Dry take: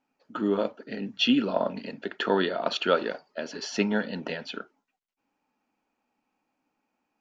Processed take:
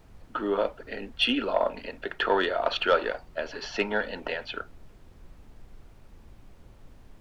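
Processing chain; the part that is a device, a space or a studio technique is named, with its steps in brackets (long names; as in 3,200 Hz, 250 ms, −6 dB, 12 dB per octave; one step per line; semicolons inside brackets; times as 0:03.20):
aircraft cabin announcement (band-pass filter 460–3,300 Hz; soft clipping −14.5 dBFS, distortion −20 dB; brown noise bed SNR 17 dB)
level +4 dB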